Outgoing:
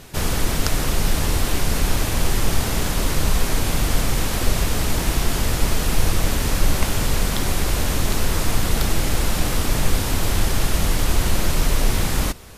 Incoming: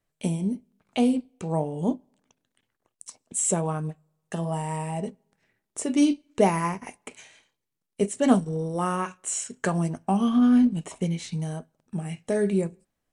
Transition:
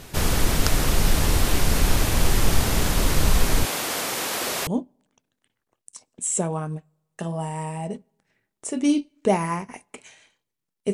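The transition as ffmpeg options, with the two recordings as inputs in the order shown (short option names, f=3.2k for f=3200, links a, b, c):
-filter_complex "[0:a]asettb=1/sr,asplit=3[a][b][c];[a]atrim=end=3.654[d];[b]atrim=start=3.65:end=4.67,asetpts=PTS-STARTPTS,afade=t=in:d=0.004:c=qsin,afade=t=out:st=1.016:d=0.004:c=qsin,highpass=400[e];[c]atrim=start=4.666[f];[d][e]acrossfade=d=0.004:c1=hsin:c2=qsin[g];[g][f]acrossfade=d=0.004:c1=qsin:c2=hsin,apad=whole_dur=10.93,atrim=end=10.93,atrim=end=4.672[h];[1:a]atrim=start=1.798:end=8.06[i];[h][i]acrossfade=d=0.004:c1=hsin:c2=hsin"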